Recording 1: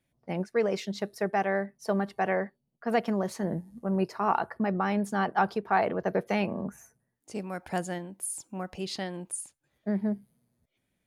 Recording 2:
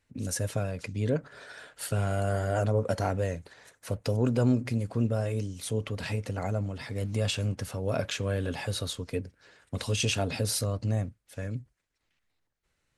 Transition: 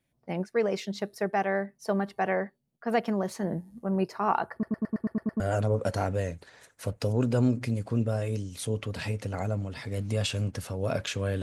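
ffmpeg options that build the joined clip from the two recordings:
ffmpeg -i cue0.wav -i cue1.wav -filter_complex "[0:a]apad=whole_dur=11.42,atrim=end=11.42,asplit=8[link_01][link_02][link_03][link_04][link_05][link_06][link_07][link_08];[link_01]atrim=end=4.632[link_09];[link_02]atrim=start=4.518:end=4.632[link_10];[link_03]atrim=start=4.518:end=4.632[link_11];[link_04]atrim=start=4.518:end=4.632[link_12];[link_05]atrim=start=4.518:end=4.632[link_13];[link_06]atrim=start=4.518:end=4.632[link_14];[link_07]atrim=start=4.518:end=4.632[link_15];[link_08]atrim=start=4.518:end=4.632[link_16];[1:a]atrim=start=2.438:end=8.46[link_17];[link_09][link_10]acrossfade=duration=0.004:curve1=hsin:curve2=hsin[link_18];[link_18][link_11]acrossfade=duration=0.004:curve1=hsin:curve2=hsin[link_19];[link_19][link_12]acrossfade=duration=0.004:curve1=hsin:curve2=hsin[link_20];[link_20][link_13]acrossfade=duration=0.004:curve1=hsin:curve2=hsin[link_21];[link_21][link_14]acrossfade=duration=0.004:curve1=hsin:curve2=hsin[link_22];[link_22][link_15]acrossfade=duration=0.004:curve1=hsin:curve2=hsin[link_23];[link_23][link_16]acrossfade=duration=0.004:curve1=hsin:curve2=hsin[link_24];[link_24][link_17]acrossfade=duration=0.004:curve1=hsin:curve2=hsin" out.wav

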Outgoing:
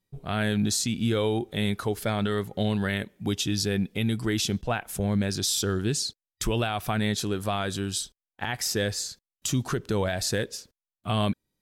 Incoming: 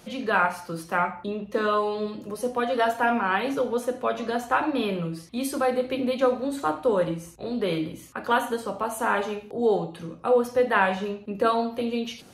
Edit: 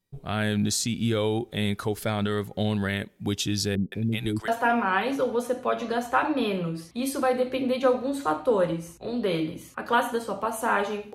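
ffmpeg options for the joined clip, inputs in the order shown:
ffmpeg -i cue0.wav -i cue1.wav -filter_complex "[0:a]asettb=1/sr,asplit=3[link_01][link_02][link_03];[link_01]atrim=end=3.754[link_04];[link_02]atrim=start=3.75:end=4.48,asetpts=PTS-STARTPTS,afade=type=in:duration=0.004:curve=qsin,afade=type=out:start_time=0.726:duration=0.004:curve=qsin,acrossover=split=520[link_05][link_06];[link_06]adelay=170[link_07];[link_05][link_07]amix=inputs=2:normalize=0,atrim=end_sample=32193[link_08];[link_03]atrim=start=4.476[link_09];[link_04][link_08]acrossfade=duration=0.004:curve1=hsin:curve2=qsin[link_10];[link_10][link_09]acrossfade=duration=0.004:curve1=qsin:curve2=hsin,apad=whole_dur=11.14,atrim=end=11.14,atrim=end=4.482[link_11];[1:a]atrim=start=2.858:end=9.52[link_12];[link_11][link_12]acrossfade=duration=0.004:curve1=hsin:curve2=hsin" out.wav

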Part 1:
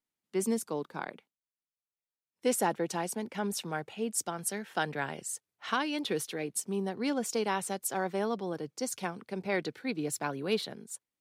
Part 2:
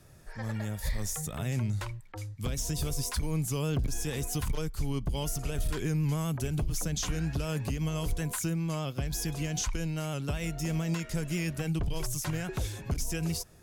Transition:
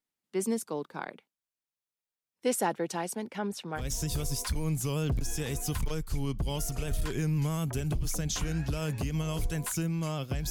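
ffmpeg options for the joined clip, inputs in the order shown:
ffmpeg -i cue0.wav -i cue1.wav -filter_complex "[0:a]asettb=1/sr,asplit=3[link_01][link_02][link_03];[link_01]atrim=end=3.384[link_04];[link_02]atrim=start=3.38:end=3.86,asetpts=PTS-STARTPTS,afade=type=in:duration=0.004:curve=qsin,afade=type=out:start_time=0.476:duration=0.004:curve=qsin,highshelf=frequency=5400:gain=-11[link_05];[link_03]atrim=start=3.856[link_06];[link_04][link_05]acrossfade=duration=0.004:curve1=hsin:curve2=qsin[link_07];[link_07][link_06]acrossfade=duration=0.004:curve1=qsin:curve2=hsin,apad=whole_dur=10.5,atrim=end=10.5,atrim=end=3.86,asetpts=PTS-STARTPTS[link_08];[1:a]atrim=start=2.41:end=9.17,asetpts=PTS-STARTPTS[link_09];[link_08][link_09]acrossfade=duration=0.12:curve1=tri:curve2=tri" out.wav

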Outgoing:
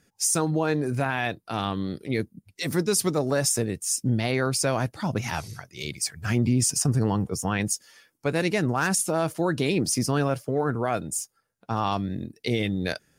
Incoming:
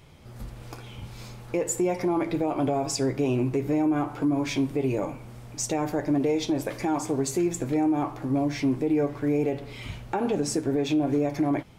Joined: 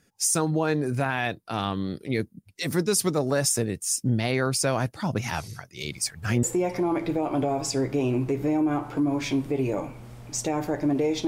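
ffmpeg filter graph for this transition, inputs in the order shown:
ffmpeg -i cue0.wav -i cue1.wav -filter_complex "[1:a]asplit=2[link_01][link_02];[0:a]apad=whole_dur=11.27,atrim=end=11.27,atrim=end=6.432[link_03];[link_02]atrim=start=1.678:end=6.52[link_04];[link_01]atrim=start=1.06:end=1.68,asetpts=PTS-STARTPTS,volume=-15.5dB,afade=type=in:duration=0.004:curve=hsin,afade=type=out:start_time=0.616:duration=0.004:curve=hsin,adelay=256221S[link_05];[link_03][link_04]acrossfade=duration=0.004:curve1=hsin:curve2=hsin[link_06];[link_06][link_05]amix=inputs=2:normalize=0" out.wav

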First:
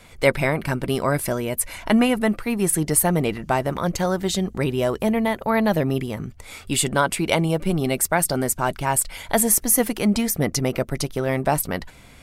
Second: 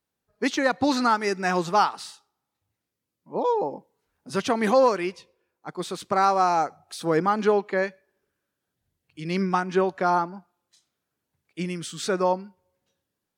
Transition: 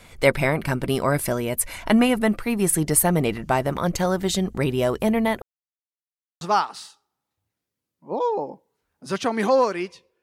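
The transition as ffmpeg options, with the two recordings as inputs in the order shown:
ffmpeg -i cue0.wav -i cue1.wav -filter_complex "[0:a]apad=whole_dur=10.22,atrim=end=10.22,asplit=2[link_01][link_02];[link_01]atrim=end=5.42,asetpts=PTS-STARTPTS,afade=type=out:start_time=5.416:duration=0.004:curve=hsin[link_03];[link_02]atrim=start=5.42:end=6.41,asetpts=PTS-STARTPTS,volume=0[link_04];[1:a]atrim=start=1.65:end=5.46,asetpts=PTS-STARTPTS,afade=type=in:duration=0.004:curve=hsin[link_05];[link_03][link_04][link_05]concat=n=3:v=0:a=1" out.wav

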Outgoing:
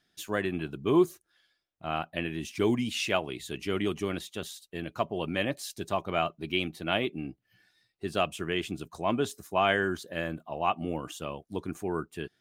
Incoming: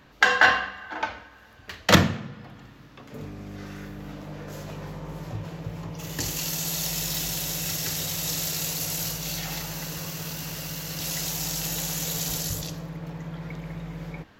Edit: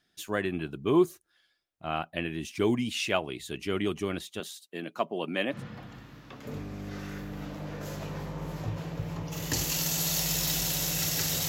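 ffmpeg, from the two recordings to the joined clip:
ffmpeg -i cue0.wav -i cue1.wav -filter_complex "[0:a]asettb=1/sr,asplit=3[link_01][link_02][link_03];[link_01]atrim=end=4.404[link_04];[link_02]atrim=start=4.4:end=5.63,asetpts=PTS-STARTPTS,afade=type=in:duration=0.004:curve=qsin,afade=type=out:start_time=1.226:duration=0.004:curve=qsin,highpass=frequency=180:width=0.5412,highpass=frequency=180:width=1.3066[link_05];[link_03]atrim=start=5.626[link_06];[link_04][link_05]acrossfade=duration=0.004:curve1=hsin:curve2=qsin[link_07];[link_07][link_06]acrossfade=duration=0.004:curve1=qsin:curve2=hsin,apad=whole_dur=11.48,atrim=end=11.48,atrim=end=5.63,asetpts=PTS-STARTPTS[link_08];[1:a]atrim=start=2.16:end=8.15,asetpts=PTS-STARTPTS[link_09];[link_08][link_09]acrossfade=duration=0.14:curve1=tri:curve2=tri" out.wav

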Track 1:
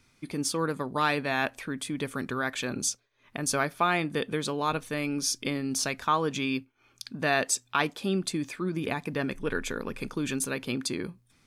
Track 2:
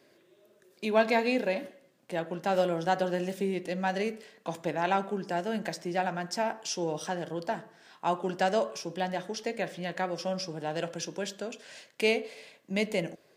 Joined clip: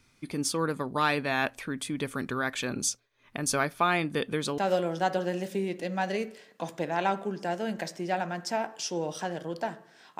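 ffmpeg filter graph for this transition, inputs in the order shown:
ffmpeg -i cue0.wav -i cue1.wav -filter_complex "[0:a]apad=whole_dur=10.19,atrim=end=10.19,atrim=end=4.582[link_01];[1:a]atrim=start=2.438:end=8.05[link_02];[link_01][link_02]acrossfade=duration=0.004:curve1=hsin:curve2=hsin" out.wav

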